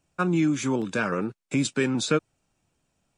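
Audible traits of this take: noise floor -77 dBFS; spectral tilt -5.0 dB/oct

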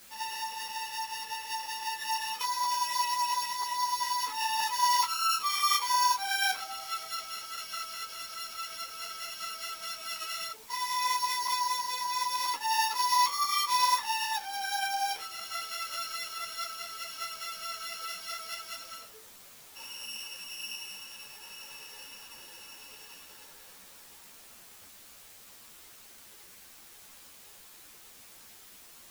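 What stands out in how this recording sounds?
a buzz of ramps at a fixed pitch in blocks of 8 samples; tremolo triangle 10 Hz, depth 30%; a quantiser's noise floor 8-bit, dither triangular; a shimmering, thickened sound

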